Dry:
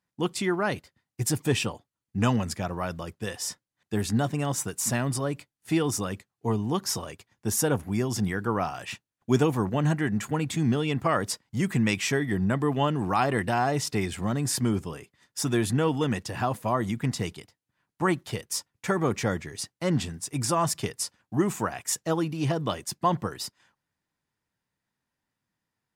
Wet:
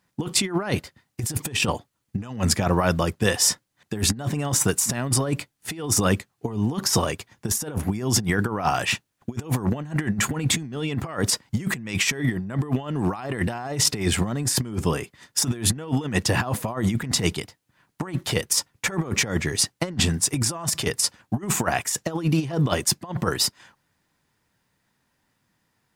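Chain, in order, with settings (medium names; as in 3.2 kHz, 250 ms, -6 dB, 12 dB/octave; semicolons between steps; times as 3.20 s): compressor with a negative ratio -31 dBFS, ratio -0.5; trim +8 dB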